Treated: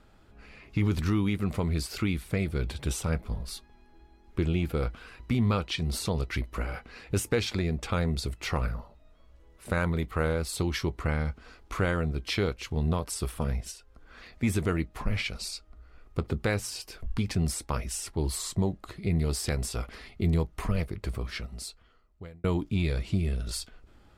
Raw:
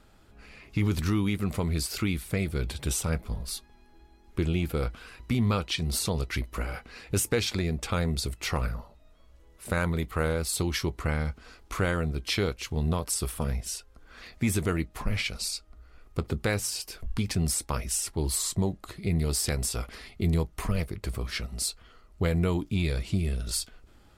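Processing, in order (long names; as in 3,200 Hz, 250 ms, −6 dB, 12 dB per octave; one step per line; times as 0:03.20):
high-shelf EQ 5,300 Hz −8.5 dB
0:13.71–0:14.43: downward compressor, threshold −44 dBFS, peak gain reduction 10 dB
0:21.09–0:22.44: fade out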